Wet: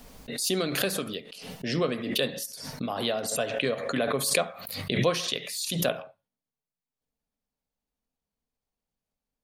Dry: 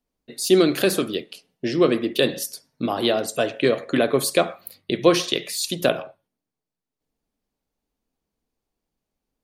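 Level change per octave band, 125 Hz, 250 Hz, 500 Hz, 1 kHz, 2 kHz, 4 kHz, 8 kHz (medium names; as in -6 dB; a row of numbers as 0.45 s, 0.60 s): -2.0 dB, -9.5 dB, -8.5 dB, -6.0 dB, -4.0 dB, -4.0 dB, -2.0 dB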